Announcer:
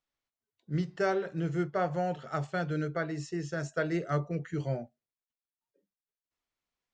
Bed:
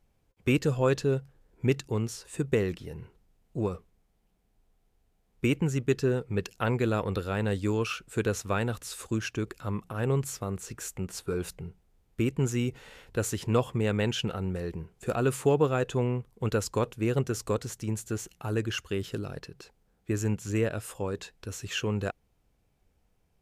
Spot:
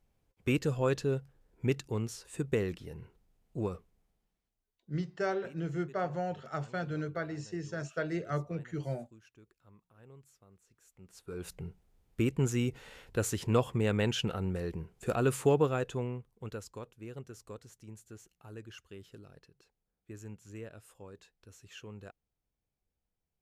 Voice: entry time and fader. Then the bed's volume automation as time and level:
4.20 s, -3.5 dB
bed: 4.09 s -4.5 dB
4.83 s -28 dB
10.81 s -28 dB
11.6 s -2 dB
15.54 s -2 dB
16.86 s -17.5 dB

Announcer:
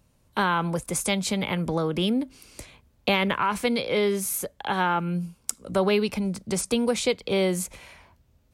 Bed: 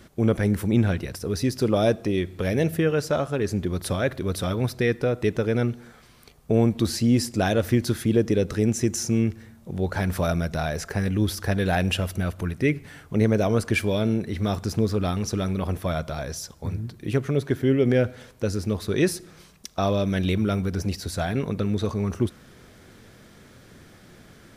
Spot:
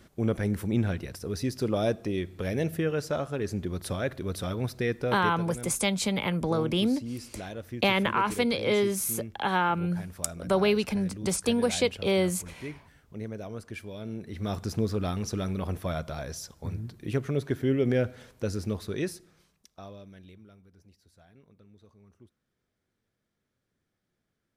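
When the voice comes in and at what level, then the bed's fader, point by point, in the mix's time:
4.75 s, -1.5 dB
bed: 5.18 s -6 dB
5.46 s -17 dB
13.94 s -17 dB
14.57 s -5 dB
18.69 s -5 dB
20.61 s -32 dB

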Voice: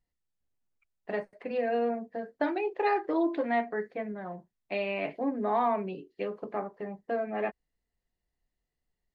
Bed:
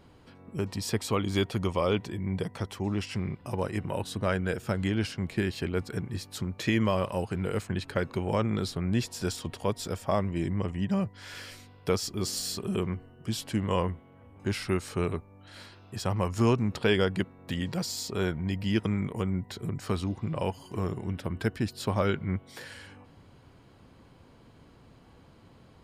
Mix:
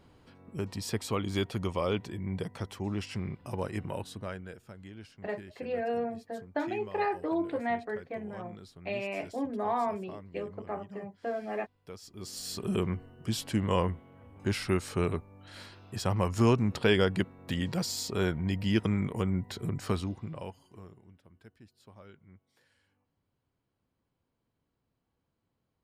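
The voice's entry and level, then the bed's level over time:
4.15 s, -3.0 dB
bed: 3.9 s -3.5 dB
4.71 s -19 dB
11.95 s -19 dB
12.67 s 0 dB
19.9 s 0 dB
21.22 s -26 dB

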